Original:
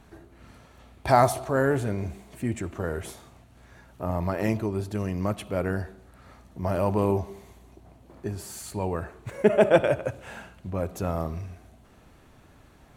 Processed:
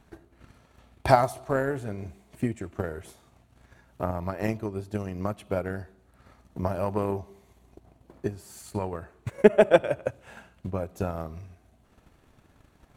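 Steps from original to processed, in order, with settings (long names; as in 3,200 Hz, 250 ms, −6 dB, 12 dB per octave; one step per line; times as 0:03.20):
transient designer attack +11 dB, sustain −3 dB
level −6.5 dB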